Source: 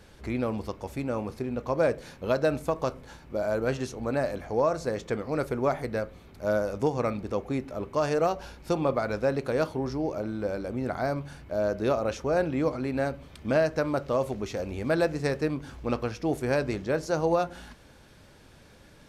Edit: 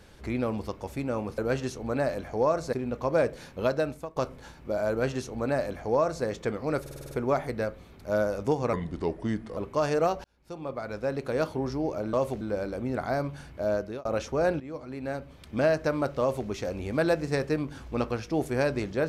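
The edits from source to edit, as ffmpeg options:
-filter_complex "[0:a]asplit=17[s0][s1][s2][s3][s4][s5][s6][s7][s8][s9][s10][s11][s12][s13][s14][s15][s16];[s0]atrim=end=1.382[s17];[s1]atrim=start=3.548:end=4.902[s18];[s2]atrim=start=1.378:end=2.81,asetpts=PTS-STARTPTS,afade=t=out:st=0.922:d=0.51:silence=0.133352[s19];[s3]atrim=start=2.81:end=5.512,asetpts=PTS-STARTPTS,afade=t=in:d=0.004:c=hsin:silence=0.133352[s20];[s4]atrim=start=5.458:end=5.512[s21];[s5]atrim=start=5.458:end=5.512[s22];[s6]atrim=start=5.458:end=5.512[s23];[s7]atrim=start=5.458:end=5.512[s24];[s8]atrim=start=5.458:end=5.512[s25];[s9]atrim=start=5.458:end=7.084[s26];[s10]atrim=start=7.08:end=7.77,asetpts=PTS-STARTPTS,asetrate=36162,aresample=44100[s27];[s11]atrim=start=7.766:end=8.44,asetpts=PTS-STARTPTS,afade=t=out:st=0.67:d=0.004:c=hsin[s28];[s12]atrim=start=8.44:end=10.332,asetpts=PTS-STARTPTS,afade=t=in:d=1.31[s29];[s13]atrim=start=14.118:end=14.402[s30];[s14]atrim=start=10.328:end=11.97,asetpts=PTS-STARTPTS,afade=t=out:st=1.312:d=0.33[s31];[s15]atrim=start=11.97:end=12.52,asetpts=PTS-STARTPTS,afade=t=in:d=0.004:c=hsin,afade=t=out:st=0.546:d=0.004:c=hsin:silence=0.158489[s32];[s16]atrim=start=12.52,asetpts=PTS-STARTPTS,afade=t=in:d=1.09:silence=0.158489[s33];[s17][s18]acrossfade=d=0.004:c1=hsin:c2=hsin[s34];[s19][s20]concat=n=2:v=0:a=1[s35];[s34][s35]acrossfade=d=0.004:c1=hsin:c2=hsin[s36];[s36][s21]acrossfade=d=0.004:c1=hsin:c2=hsin[s37];[s37][s22]acrossfade=d=0.004:c1=hsin:c2=hsin[s38];[s38][s23]acrossfade=d=0.004:c1=hsin:c2=hsin[s39];[s39][s24]acrossfade=d=0.004:c1=hsin:c2=hsin[s40];[s40][s25]acrossfade=d=0.004:c1=hsin:c2=hsin[s41];[s41][s26]acrossfade=d=0.004:c1=hsin:c2=hsin[s42];[s42][s27]acrossfade=d=0.004:c1=hsin:c2=hsin[s43];[s28][s29]concat=n=2:v=0:a=1[s44];[s43][s44]acrossfade=d=0.004:c1=hsin:c2=hsin[s45];[s45][s30]acrossfade=d=0.004:c1=hsin:c2=hsin[s46];[s31][s32][s33]concat=n=3:v=0:a=1[s47];[s46][s47]acrossfade=d=0.004:c1=hsin:c2=hsin"

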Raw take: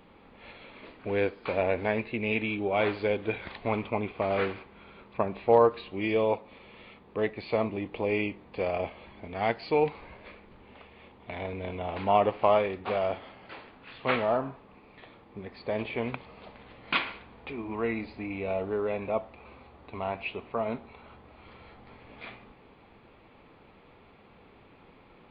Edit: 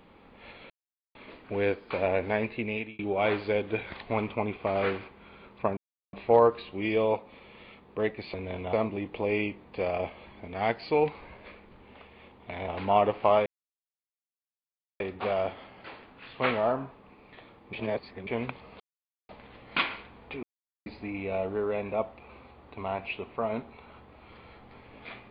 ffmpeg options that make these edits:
-filter_complex "[0:a]asplit=13[s0][s1][s2][s3][s4][s5][s6][s7][s8][s9][s10][s11][s12];[s0]atrim=end=0.7,asetpts=PTS-STARTPTS,afade=t=out:st=0.696:d=0.004:c=hsin,apad=pad_dur=0.45[s13];[s1]atrim=start=0.7:end=2.54,asetpts=PTS-STARTPTS,afade=t=in:d=0.004:c=hsin,afade=t=out:st=1.47:d=0.37[s14];[s2]atrim=start=2.54:end=5.32,asetpts=PTS-STARTPTS,afade=t=in:d=0.004:c=hsin,afade=t=out:st=2.776:d=0.004:c=hsin,apad=pad_dur=0.36[s15];[s3]atrim=start=5.32:end=7.532,asetpts=PTS-STARTPTS,afade=t=in:d=0.004:c=hsin[s16];[s4]atrim=start=11.478:end=11.872[s17];[s5]atrim=start=7.528:end=11.482[s18];[s6]atrim=start=11.868:end=12.65,asetpts=PTS-STARTPTS,afade=t=out:st=0.778:d=0.004:c=hsin,apad=pad_dur=1.54[s19];[s7]atrim=start=12.65:end=15.382,asetpts=PTS-STARTPTS,afade=t=in:d=0.004:c=hsin[s20];[s8]atrim=start=15.378:end=15.922,asetpts=PTS-STARTPTS,areverse[s21];[s9]atrim=start=15.918:end=16.45,asetpts=PTS-STARTPTS,afade=t=out:st=0.528:d=0.004:c=hsin,apad=pad_dur=0.49[s22];[s10]atrim=start=16.45:end=17.59,asetpts=PTS-STARTPTS,afade=t=in:d=0.004:c=hsin,afade=t=out:st=1.136:d=0.004:c=hsin[s23];[s11]atrim=start=17.59:end=18.02,asetpts=PTS-STARTPTS,volume=0[s24];[s12]atrim=start=18.02,asetpts=PTS-STARTPTS,afade=t=in:d=0.004:c=hsin[s25];[s13][s14][s15][s16]concat=n=4:v=0:a=1[s26];[s26][s17]acrossfade=d=0.004:c1=hsin:c2=hsin[s27];[s27][s18]acrossfade=d=0.004:c1=hsin:c2=hsin[s28];[s19][s20]concat=n=2:v=0:a=1[s29];[s28][s29]acrossfade=d=0.004:c1=hsin:c2=hsin[s30];[s30][s21]acrossfade=d=0.004:c1=hsin:c2=hsin[s31];[s22][s23][s24][s25]concat=n=4:v=0:a=1[s32];[s31][s32]acrossfade=d=0.004:c1=hsin:c2=hsin"

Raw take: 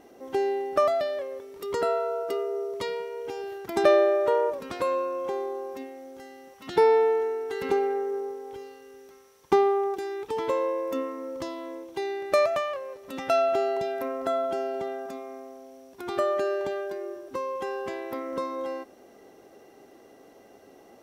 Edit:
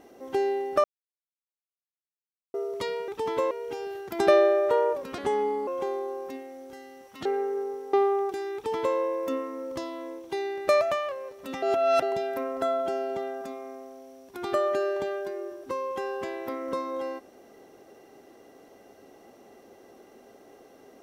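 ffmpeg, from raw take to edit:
-filter_complex "[0:a]asplit=11[s0][s1][s2][s3][s4][s5][s6][s7][s8][s9][s10];[s0]atrim=end=0.84,asetpts=PTS-STARTPTS,afade=t=out:st=0.836:d=0.004:c=hsin[s11];[s1]atrim=start=0.84:end=2.54,asetpts=PTS-STARTPTS,volume=0[s12];[s2]atrim=start=2.54:end=3.082,asetpts=PTS-STARTPTS,afade=t=in:d=0.004:c=hsin[s13];[s3]atrim=start=10.188:end=10.622[s14];[s4]atrim=start=3.078:end=4.754[s15];[s5]atrim=start=4.75:end=5.14,asetpts=PTS-STARTPTS,asetrate=34839,aresample=44100[s16];[s6]atrim=start=5.136:end=6.722[s17];[s7]atrim=start=7.818:end=8.502[s18];[s8]atrim=start=9.578:end=13.272[s19];[s9]atrim=start=13.268:end=13.672,asetpts=PTS-STARTPTS,areverse[s20];[s10]atrim=start=13.668[s21];[s11][s12][s13]concat=n=3:v=0:a=1[s22];[s22][s14]acrossfade=d=0.004:c1=hsin:c2=hsin[s23];[s23][s15]acrossfade=d=0.004:c1=hsin:c2=hsin[s24];[s24][s16]acrossfade=d=0.004:c1=hsin:c2=hsin[s25];[s25][s17]acrossfade=d=0.004:c1=hsin:c2=hsin[s26];[s26][s18]acrossfade=d=0.004:c1=hsin:c2=hsin[s27];[s27][s19]acrossfade=d=0.004:c1=hsin:c2=hsin[s28];[s28][s20]acrossfade=d=0.004:c1=hsin:c2=hsin[s29];[s29][s21]acrossfade=d=0.004:c1=hsin:c2=hsin"

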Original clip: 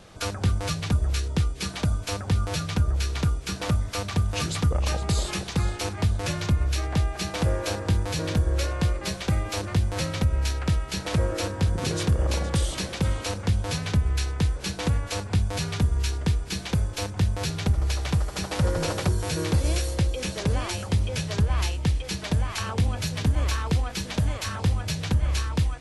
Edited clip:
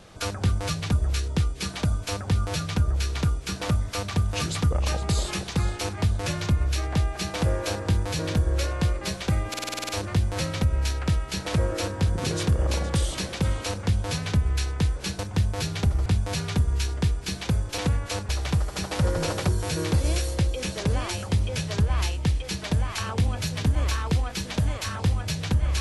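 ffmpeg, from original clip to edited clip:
-filter_complex "[0:a]asplit=13[s0][s1][s2][s3][s4][s5][s6][s7][s8][s9][s10][s11][s12];[s0]atrim=end=9.542[s13];[s1]atrim=start=9.488:end=9.542[s14];[s2]atrim=start=9.488:end=9.542[s15];[s3]atrim=start=9.488:end=9.542[s16];[s4]atrim=start=9.488:end=9.542[s17];[s5]atrim=start=9.488:end=9.542[s18];[s6]atrim=start=9.488:end=9.542[s19];[s7]atrim=start=9.488:end=9.542[s20];[s8]atrim=start=9.488:end=14.792[s21];[s9]atrim=start=17.018:end=17.892[s22];[s10]atrim=start=15.298:end=17.022[s23];[s11]atrim=start=14.788:end=15.302[s24];[s12]atrim=start=17.888[s25];[s13][s14]acrossfade=d=0.004:c1=hsin:c2=hsin[s26];[s26][s15]acrossfade=d=0.004:c1=hsin:c2=hsin[s27];[s27][s16]acrossfade=d=0.004:c1=hsin:c2=hsin[s28];[s28][s17]acrossfade=d=0.004:c1=hsin:c2=hsin[s29];[s29][s18]acrossfade=d=0.004:c1=hsin:c2=hsin[s30];[s30][s19]acrossfade=d=0.004:c1=hsin:c2=hsin[s31];[s31][s20]acrossfade=d=0.004:c1=hsin:c2=hsin[s32];[s32][s21]acrossfade=d=0.004:c1=hsin:c2=hsin[s33];[s33][s22]acrossfade=d=0.004:c1=hsin:c2=hsin[s34];[s34][s23]acrossfade=d=0.004:c1=hsin:c2=hsin[s35];[s35][s24]acrossfade=d=0.004:c1=hsin:c2=hsin[s36];[s36][s25]acrossfade=d=0.004:c1=hsin:c2=hsin"

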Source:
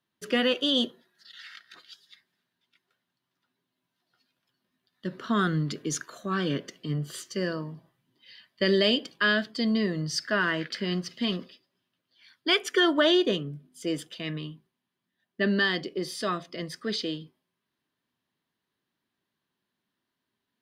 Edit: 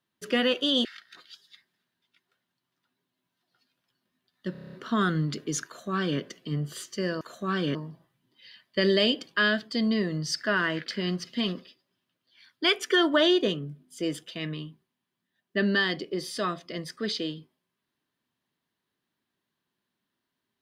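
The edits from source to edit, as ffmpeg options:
-filter_complex "[0:a]asplit=11[s0][s1][s2][s3][s4][s5][s6][s7][s8][s9][s10];[s0]atrim=end=0.852[s11];[s1]atrim=start=1.438:end=5.142[s12];[s2]atrim=start=5.108:end=5.142[s13];[s3]atrim=start=5.108:end=5.142[s14];[s4]atrim=start=5.108:end=5.142[s15];[s5]atrim=start=5.108:end=5.142[s16];[s6]atrim=start=5.108:end=5.142[s17];[s7]atrim=start=5.108:end=5.142[s18];[s8]atrim=start=5.108:end=7.592[s19];[s9]atrim=start=6.038:end=6.582[s20];[s10]atrim=start=7.588[s21];[s11][s12]acrossfade=d=0.004:c1=hsin:c2=hsin[s22];[s22][s13]acrossfade=d=0.004:c1=hsin:c2=hsin[s23];[s23][s14]acrossfade=d=0.004:c1=hsin:c2=hsin[s24];[s24][s15]acrossfade=d=0.004:c1=hsin:c2=hsin[s25];[s25][s16]acrossfade=d=0.004:c1=hsin:c2=hsin[s26];[s26][s17]acrossfade=d=0.004:c1=hsin:c2=hsin[s27];[s27][s18]acrossfade=d=0.004:c1=hsin:c2=hsin[s28];[s28][s19]acrossfade=d=0.004:c1=hsin:c2=hsin[s29];[s29][s20]acrossfade=d=0.004:c1=hsin:c2=hsin[s30];[s30][s21]acrossfade=d=0.004:c1=hsin:c2=hsin"

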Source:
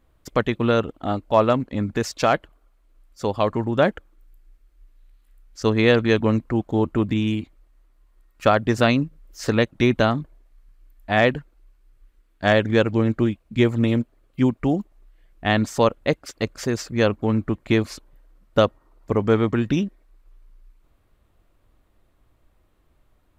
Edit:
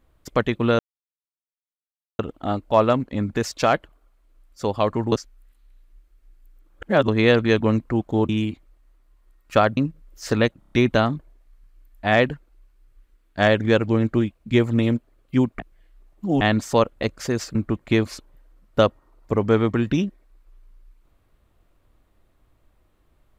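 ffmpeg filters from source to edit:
-filter_complex "[0:a]asplit=14[s0][s1][s2][s3][s4][s5][s6][s7][s8][s9][s10][s11][s12][s13];[s0]atrim=end=0.79,asetpts=PTS-STARTPTS,afade=t=out:st=0.786:d=0.004:c=hsin,apad=pad_dur=1.4[s14];[s1]atrim=start=0.79:end=3.722,asetpts=PTS-STARTPTS,afade=t=in:d=0.004:c=hsin[s15];[s2]atrim=start=3.718:end=5.682,asetpts=PTS-STARTPTS,areverse[s16];[s3]atrim=start=5.678:end=6.892[s17];[s4]atrim=start=7.188:end=8.672[s18];[s5]atrim=start=8.938:end=9.792[s19];[s6]atrim=start=9.758:end=9.792[s20];[s7]atrim=start=9.758:end=9.792[s21];[s8]atrim=start=9.758:end=9.792[s22];[s9]atrim=start=9.758:end=14.642[s23];[s10]atrim=start=14.638:end=15.462,asetpts=PTS-STARTPTS,areverse[s24];[s11]atrim=start=15.458:end=16.082[s25];[s12]atrim=start=16.408:end=16.932[s26];[s13]atrim=start=17.338[s27];[s14][s15]concat=n=2:v=0:a=1[s28];[s28][s16]acrossfade=d=0.004:c1=hsin:c2=hsin[s29];[s29][s17]acrossfade=d=0.004:c1=hsin:c2=hsin[s30];[s30][s18]acrossfade=d=0.004:c1=hsin:c2=hsin[s31];[s31][s19]acrossfade=d=0.004:c1=hsin:c2=hsin[s32];[s32][s20]acrossfade=d=0.004:c1=hsin:c2=hsin[s33];[s33][s21]acrossfade=d=0.004:c1=hsin:c2=hsin[s34];[s34][s22]acrossfade=d=0.004:c1=hsin:c2=hsin[s35];[s35][s23]acrossfade=d=0.004:c1=hsin:c2=hsin[s36];[s36][s24]acrossfade=d=0.004:c1=hsin:c2=hsin[s37];[s37][s25]acrossfade=d=0.004:c1=hsin:c2=hsin[s38];[s38][s26]acrossfade=d=0.004:c1=hsin:c2=hsin[s39];[s39][s27]acrossfade=d=0.004:c1=hsin:c2=hsin"

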